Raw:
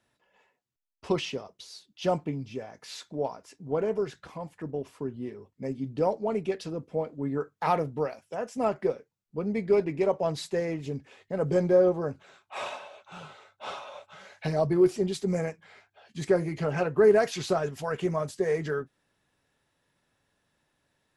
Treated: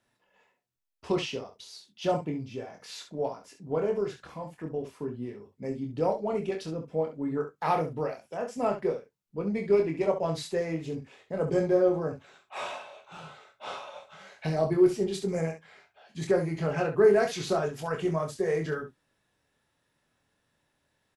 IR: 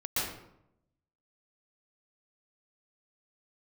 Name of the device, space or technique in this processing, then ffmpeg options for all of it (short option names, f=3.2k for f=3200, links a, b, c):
slapback doubling: -filter_complex "[0:a]asplit=3[a][b][c];[b]adelay=25,volume=-5dB[d];[c]adelay=67,volume=-9.5dB[e];[a][d][e]amix=inputs=3:normalize=0,volume=-2dB"